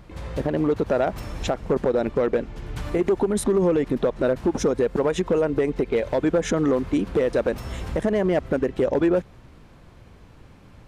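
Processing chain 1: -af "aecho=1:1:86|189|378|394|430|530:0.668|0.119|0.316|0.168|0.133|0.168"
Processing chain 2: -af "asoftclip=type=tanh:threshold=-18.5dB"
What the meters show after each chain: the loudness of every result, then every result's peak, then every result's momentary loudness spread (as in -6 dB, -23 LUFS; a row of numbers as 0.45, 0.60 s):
-21.5, -26.5 LUFS; -7.0, -19.0 dBFS; 7, 6 LU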